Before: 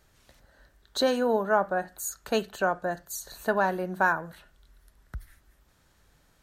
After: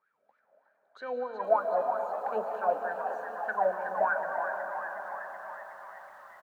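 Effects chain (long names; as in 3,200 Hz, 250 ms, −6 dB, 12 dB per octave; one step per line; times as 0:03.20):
high-pass filter 120 Hz 12 dB per octave
parametric band 12,000 Hz −6 dB 1.6 octaves
hum removal 230.9 Hz, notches 5
in parallel at +0.5 dB: speech leveller within 5 dB 2 s
on the sum: hard clipping −7.5 dBFS, distortion −28 dB
hollow resonant body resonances 200/450/2,300 Hz, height 12 dB, ringing for 25 ms
LFO wah 3.2 Hz 580–1,600 Hz, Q 14
echo with shifted repeats 370 ms, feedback 62%, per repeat +71 Hz, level −8 dB
on a send at −5 dB: convolution reverb RT60 4.7 s, pre-delay 100 ms
on the sum: feedback echo at a low word length 479 ms, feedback 55%, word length 9 bits, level −14.5 dB
level −1.5 dB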